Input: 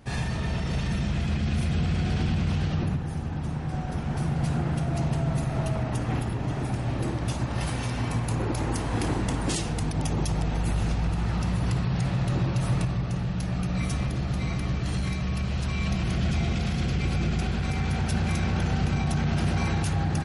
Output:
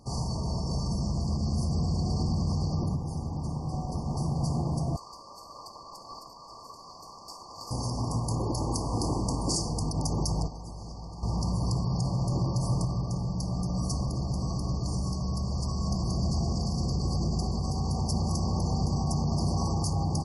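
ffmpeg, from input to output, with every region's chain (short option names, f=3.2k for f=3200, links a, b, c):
-filter_complex "[0:a]asettb=1/sr,asplit=3[a][b][c];[a]atrim=end=4.964[d];[b]atrim=start=4.96:end=7.71,asetpts=PTS-STARTPTS,afade=t=in:d=0.004:c=qsin,afade=t=out:st=2.746:d=0.004:c=qsin,aemphasis=mode=reproduction:type=50kf,aeval=exprs='val(0)*sin(2*PI*1900*n/s)':c=same[e];[c]atrim=start=7.706[f];[d][e]acrossfade=d=0.004:c1=hsin:c2=qsin[g];[g][f]acrossfade=d=0.004:c1=qsin:c2=hsin,asettb=1/sr,asplit=3[h][i][j];[h]atrim=end=10.474[k];[i]atrim=start=10.47:end=11.23,asetpts=PTS-STARTPTS,afade=t=in:d=0.004:c=qsin,afade=t=out:st=0.756:d=0.004:c=qsin,lowpass=3.6k,aemphasis=mode=production:type=75fm,acrossover=split=340|770[l][m][n];[l]acompressor=threshold=-39dB:ratio=4[o];[m]acompressor=threshold=-51dB:ratio=4[p];[n]acompressor=threshold=-48dB:ratio=4[q];[o][p][q]amix=inputs=3:normalize=0[r];[j]atrim=start=11.226[s];[k][r]acrossfade=d=0.004:c1=hsin:c2=qsin[t];[t][s]acrossfade=d=0.004:c1=qsin:c2=hsin,afftfilt=real='re*(1-between(b*sr/4096,1200,4400))':imag='im*(1-between(b*sr/4096,1200,4400))':win_size=4096:overlap=0.75,equalizer=f=3.3k:w=0.69:g=11.5,volume=-2.5dB"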